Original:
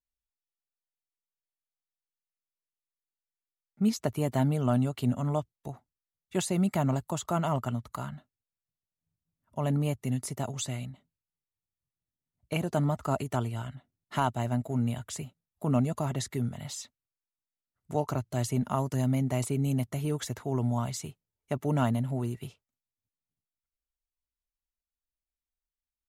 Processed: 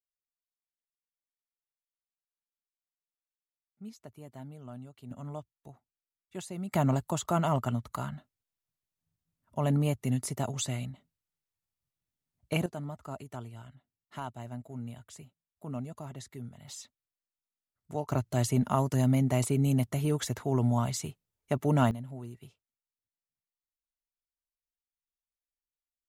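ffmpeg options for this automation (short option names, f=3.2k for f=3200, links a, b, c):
-af "asetnsamples=n=441:p=0,asendcmd='5.11 volume volume -11dB;6.72 volume volume 1dB;12.66 volume volume -11.5dB;16.68 volume volume -5dB;18.12 volume volume 2dB;21.91 volume volume -10.5dB',volume=-19dB"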